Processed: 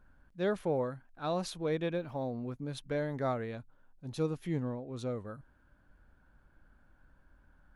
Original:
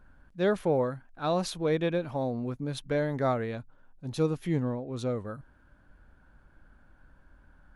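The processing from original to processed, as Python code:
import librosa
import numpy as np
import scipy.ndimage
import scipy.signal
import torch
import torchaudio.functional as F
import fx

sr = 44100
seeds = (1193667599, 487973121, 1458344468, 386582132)

y = fx.resample_linear(x, sr, factor=2, at=(1.97, 2.52))
y = F.gain(torch.from_numpy(y), -5.5).numpy()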